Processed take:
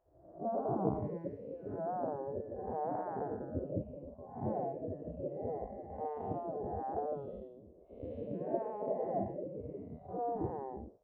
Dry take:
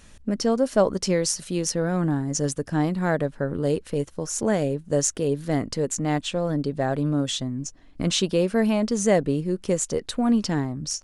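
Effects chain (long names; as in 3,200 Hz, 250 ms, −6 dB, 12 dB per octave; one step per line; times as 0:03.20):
spectrum smeared in time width 321 ms
high-pass filter 75 Hz 12 dB per octave
noise reduction from a noise print of the clip's start 16 dB
transistor ladder low-pass 600 Hz, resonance 55%
gate on every frequency bin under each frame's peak −15 dB weak
level +16.5 dB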